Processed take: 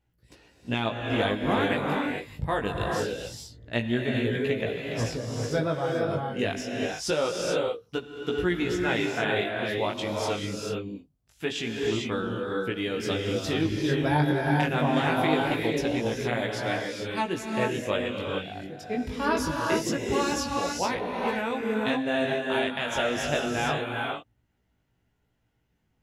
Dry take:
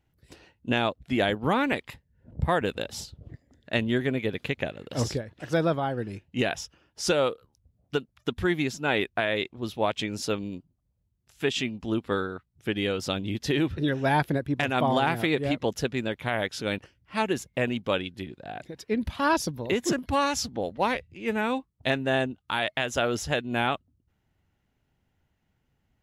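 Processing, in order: non-linear reverb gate 0.47 s rising, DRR 0 dB; chorus 0.24 Hz, delay 16.5 ms, depth 4 ms

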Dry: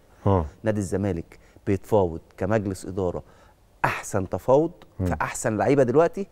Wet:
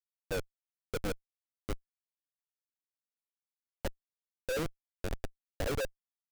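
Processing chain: vocal tract filter e; LFO high-pass sine 1.7 Hz 250–3200 Hz; Schmitt trigger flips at -26.5 dBFS; gain -2 dB

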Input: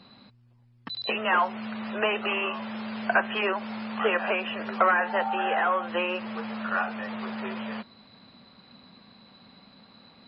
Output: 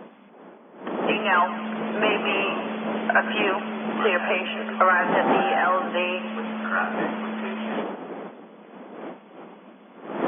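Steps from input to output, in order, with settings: wind noise 620 Hz -34 dBFS; brick-wall FIR band-pass 170–3500 Hz; split-band echo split 630 Hz, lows 0.274 s, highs 0.11 s, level -14.5 dB; gain +3 dB

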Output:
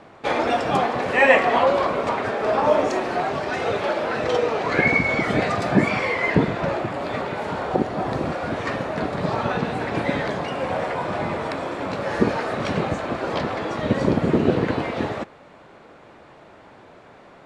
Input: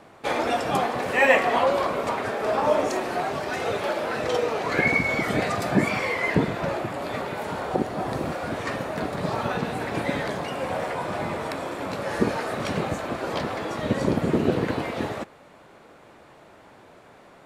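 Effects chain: air absorption 75 m; gain +3.5 dB

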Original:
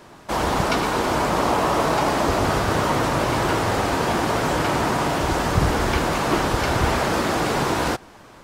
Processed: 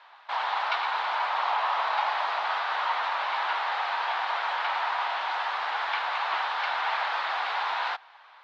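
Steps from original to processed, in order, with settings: Chebyshev band-pass 810–3900 Hz, order 3; gain -3 dB

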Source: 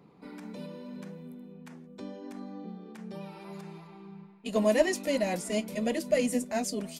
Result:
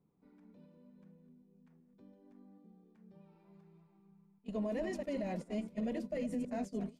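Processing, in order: reverse delay 0.129 s, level -10 dB; RIAA curve playback; gate -28 dBFS, range -15 dB; low shelf 160 Hz -4.5 dB; limiter -21 dBFS, peak gain reduction 11 dB; gain -8.5 dB

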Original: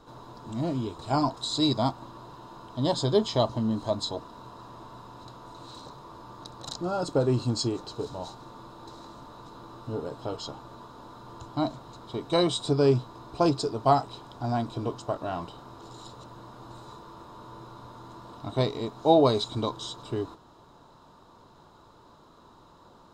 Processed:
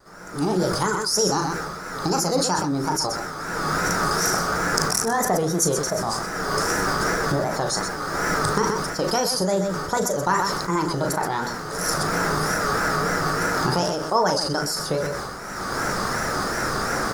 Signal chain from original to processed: recorder AGC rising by 20 dB/s; wow and flutter 130 cents; notches 60/120/180/240/300/360/420 Hz; speed mistake 33 rpm record played at 45 rpm; high shelf 5300 Hz +8 dB; on a send: loudspeakers at several distances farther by 13 m -10 dB, 43 m -11 dB; on the sum: sustainer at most 31 dB/s; gain -1.5 dB

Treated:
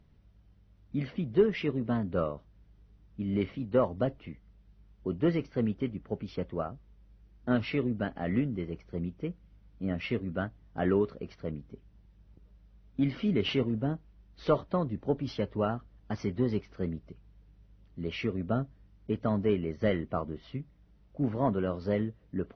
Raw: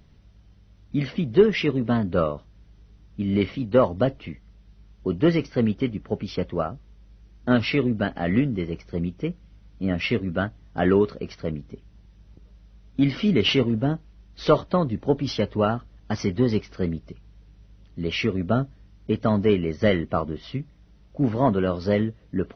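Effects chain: high shelf 3700 Hz -10.5 dB; gain -7.5 dB

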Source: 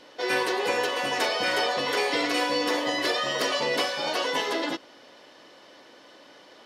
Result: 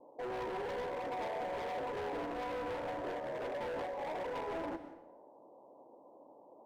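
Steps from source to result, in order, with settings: steep low-pass 980 Hz 72 dB/oct; low shelf 290 Hz -9 dB; hard clip -35 dBFS, distortion -7 dB; on a send: reverb RT60 0.80 s, pre-delay 0.117 s, DRR 11 dB; on the sum: gain -2.5 dB

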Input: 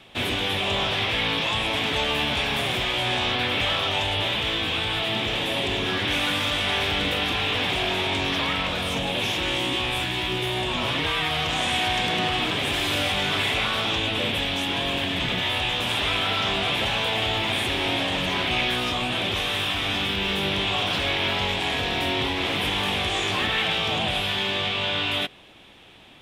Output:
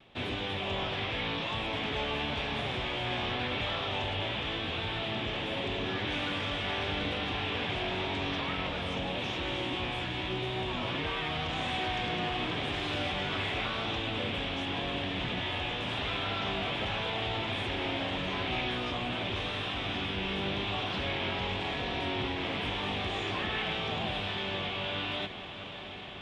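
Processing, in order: high shelf 4000 Hz +9.5 dB; vibrato 0.88 Hz 29 cents; tape spacing loss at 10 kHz 28 dB; on a send: diffused feedback echo 0.703 s, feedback 79%, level -12 dB; on the sum: gain -6 dB

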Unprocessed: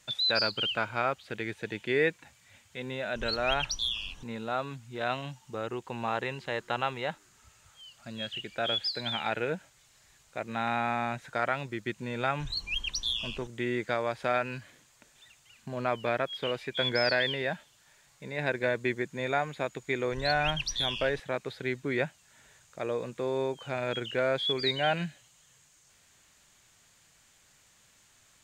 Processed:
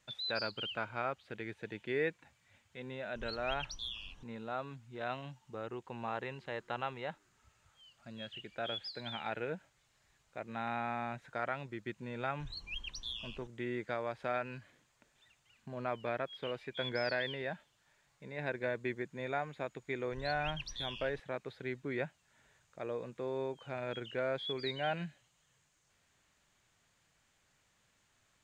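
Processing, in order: high shelf 4300 Hz -10 dB; gain -7 dB

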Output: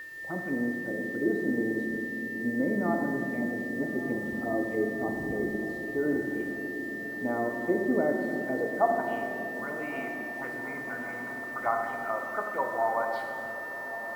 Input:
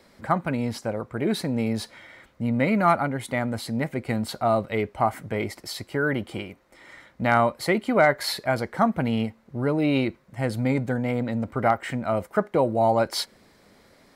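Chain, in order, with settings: wind noise 120 Hz -36 dBFS; low shelf 150 Hz -7 dB; in parallel at -8.5 dB: soft clip -20.5 dBFS, distortion -10 dB; on the sum: band-pass sweep 330 Hz -> 1100 Hz, 8.46–9.08; envelope phaser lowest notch 190 Hz, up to 3000 Hz, full sweep at -26.5 dBFS; whine 1800 Hz -36 dBFS; bit-crush 9-bit; diffused feedback echo 1.205 s, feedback 68%, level -14 dB; on a send at -2 dB: reverb RT60 2.9 s, pre-delay 4 ms; on the sum: gain -1.5 dB

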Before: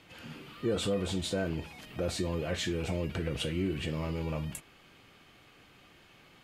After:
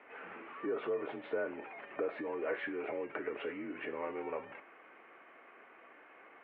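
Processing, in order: compressor, threshold -33 dBFS, peak gain reduction 7.5 dB; mistuned SSB -54 Hz 420–2200 Hz; gain +5 dB

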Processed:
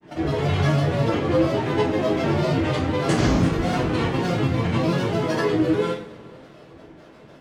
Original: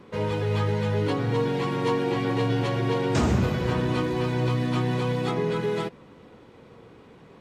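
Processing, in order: grains, pitch spread up and down by 7 st; two-slope reverb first 0.43 s, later 2.8 s, from -21 dB, DRR -3 dB

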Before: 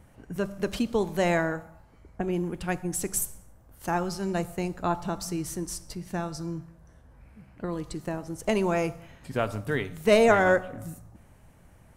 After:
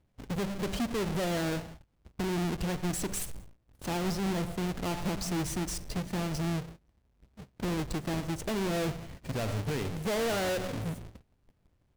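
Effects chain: half-waves squared off; high shelf 8600 Hz -6 dB; soft clip -18 dBFS, distortion -11 dB; bell 1200 Hz -3 dB 1.7 oct; gate -45 dBFS, range -21 dB; limiter -27 dBFS, peak gain reduction 9 dB

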